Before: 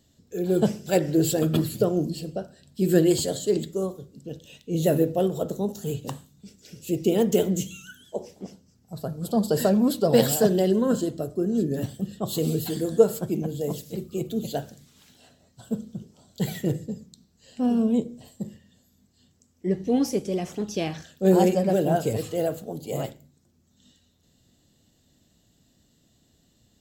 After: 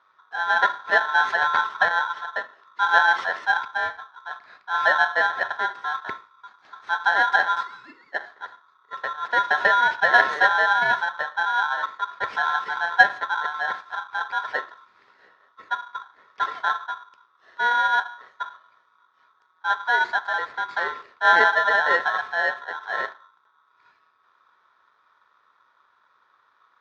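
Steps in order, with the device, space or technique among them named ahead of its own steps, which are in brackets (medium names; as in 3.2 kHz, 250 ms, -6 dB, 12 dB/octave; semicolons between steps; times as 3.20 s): ring modulator pedal into a guitar cabinet (polarity switched at an audio rate 1.2 kHz; cabinet simulation 99–3600 Hz, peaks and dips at 150 Hz -5 dB, 400 Hz +6 dB, 1.2 kHz +6 dB, 1.8 kHz +7 dB, 2.9 kHz -9 dB); trim -1 dB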